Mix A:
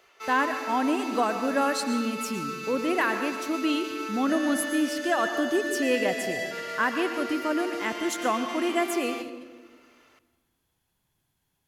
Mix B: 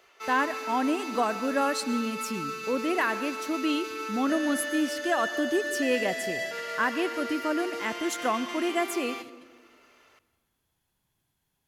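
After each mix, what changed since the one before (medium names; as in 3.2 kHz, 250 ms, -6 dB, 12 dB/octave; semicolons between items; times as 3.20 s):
speech: send -8.5 dB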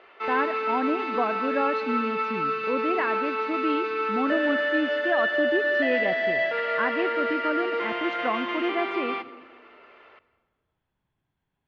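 background +9.5 dB; master: add Bessel low-pass 2.2 kHz, order 6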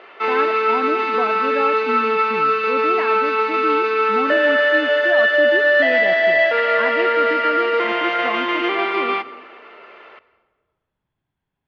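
background +9.5 dB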